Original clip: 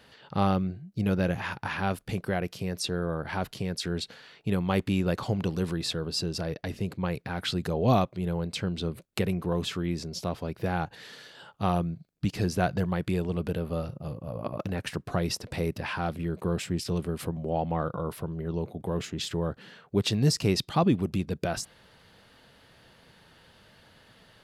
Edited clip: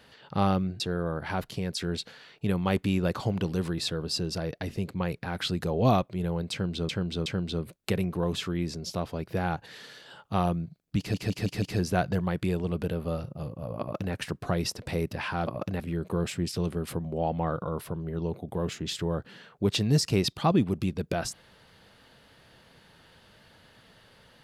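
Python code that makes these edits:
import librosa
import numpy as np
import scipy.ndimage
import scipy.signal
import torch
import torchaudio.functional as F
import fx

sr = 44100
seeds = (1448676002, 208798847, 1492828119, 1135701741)

y = fx.edit(x, sr, fx.cut(start_s=0.8, length_s=2.03),
    fx.repeat(start_s=8.55, length_s=0.37, count=3),
    fx.stutter(start_s=12.27, slice_s=0.16, count=5),
    fx.duplicate(start_s=14.45, length_s=0.33, to_s=16.12), tone=tone)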